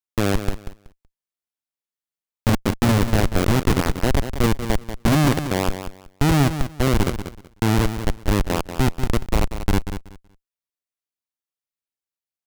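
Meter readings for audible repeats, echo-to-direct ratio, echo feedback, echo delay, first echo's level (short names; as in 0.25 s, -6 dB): 2, -10.0 dB, 20%, 0.188 s, -10.0 dB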